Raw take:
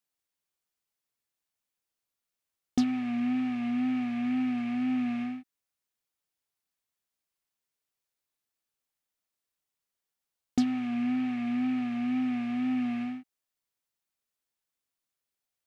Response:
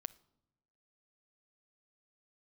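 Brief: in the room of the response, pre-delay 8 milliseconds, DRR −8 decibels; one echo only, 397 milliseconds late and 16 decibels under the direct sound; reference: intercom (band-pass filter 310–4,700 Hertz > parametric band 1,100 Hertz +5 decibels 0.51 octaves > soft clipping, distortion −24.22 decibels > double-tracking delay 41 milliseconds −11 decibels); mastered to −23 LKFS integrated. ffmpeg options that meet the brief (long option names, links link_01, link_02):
-filter_complex "[0:a]aecho=1:1:397:0.158,asplit=2[link_01][link_02];[1:a]atrim=start_sample=2205,adelay=8[link_03];[link_02][link_03]afir=irnorm=-1:irlink=0,volume=11.5dB[link_04];[link_01][link_04]amix=inputs=2:normalize=0,highpass=310,lowpass=4700,equalizer=frequency=1100:width_type=o:width=0.51:gain=5,asoftclip=threshold=-12dB,asplit=2[link_05][link_06];[link_06]adelay=41,volume=-11dB[link_07];[link_05][link_07]amix=inputs=2:normalize=0,volume=2.5dB"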